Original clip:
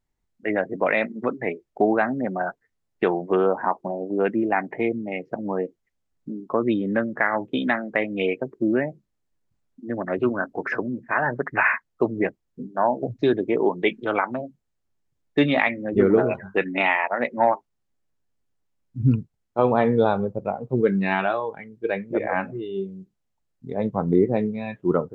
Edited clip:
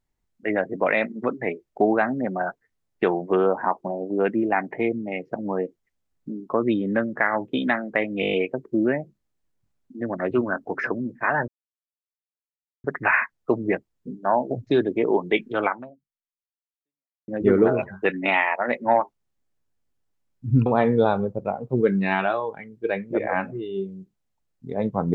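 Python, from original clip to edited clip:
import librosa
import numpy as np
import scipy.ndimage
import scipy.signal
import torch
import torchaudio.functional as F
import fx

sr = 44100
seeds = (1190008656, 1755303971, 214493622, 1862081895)

y = fx.edit(x, sr, fx.stutter(start_s=8.21, slice_s=0.02, count=7),
    fx.insert_silence(at_s=11.36, length_s=1.36),
    fx.fade_out_span(start_s=14.19, length_s=1.61, curve='exp'),
    fx.cut(start_s=19.18, length_s=0.48), tone=tone)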